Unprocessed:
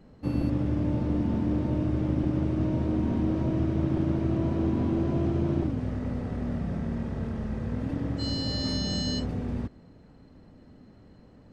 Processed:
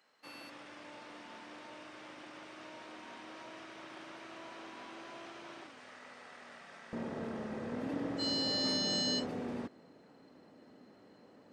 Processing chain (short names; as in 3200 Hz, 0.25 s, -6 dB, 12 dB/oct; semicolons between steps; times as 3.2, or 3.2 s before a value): HPF 1400 Hz 12 dB/oct, from 6.93 s 330 Hz